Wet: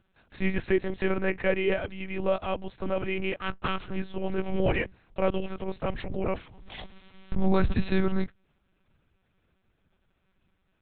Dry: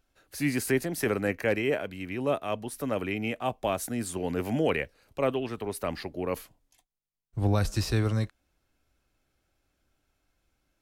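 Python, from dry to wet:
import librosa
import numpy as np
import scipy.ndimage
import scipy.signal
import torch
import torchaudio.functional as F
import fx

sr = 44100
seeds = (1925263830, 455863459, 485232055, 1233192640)

y = fx.lower_of_two(x, sr, delay_ms=0.7, at=(3.36, 3.96))
y = fx.peak_eq(y, sr, hz=78.0, db=13.0, octaves=0.3)
y = fx.lpc_monotone(y, sr, seeds[0], pitch_hz=190.0, order=8)
y = fx.pre_swell(y, sr, db_per_s=32.0, at=(6.03, 7.72), fade=0.02)
y = F.gain(torch.from_numpy(y), 1.5).numpy()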